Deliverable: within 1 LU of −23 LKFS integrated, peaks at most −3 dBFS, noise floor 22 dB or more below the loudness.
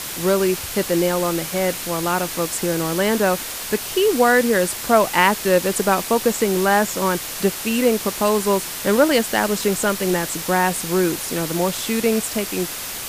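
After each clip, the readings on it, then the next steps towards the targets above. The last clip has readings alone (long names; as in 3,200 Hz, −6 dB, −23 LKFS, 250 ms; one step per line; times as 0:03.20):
background noise floor −30 dBFS; target noise floor −42 dBFS; integrated loudness −19.5 LKFS; sample peak −1.0 dBFS; target loudness −23.0 LKFS
→ broadband denoise 12 dB, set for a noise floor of −30 dBFS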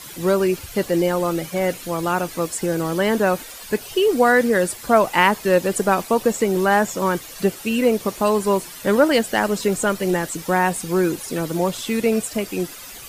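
background noise floor −38 dBFS; target noise floor −43 dBFS
→ broadband denoise 6 dB, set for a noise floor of −38 dBFS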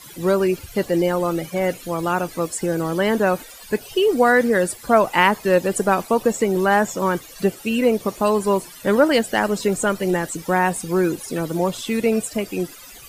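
background noise floor −41 dBFS; target noise floor −43 dBFS
→ broadband denoise 6 dB, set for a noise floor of −41 dBFS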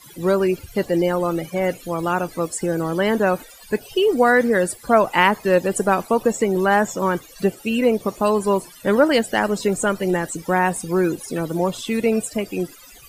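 background noise floor −45 dBFS; integrated loudness −20.5 LKFS; sample peak −1.5 dBFS; target loudness −23.0 LKFS
→ level −2.5 dB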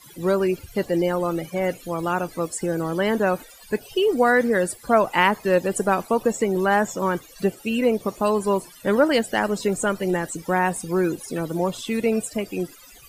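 integrated loudness −23.0 LKFS; sample peak −4.0 dBFS; background noise floor −47 dBFS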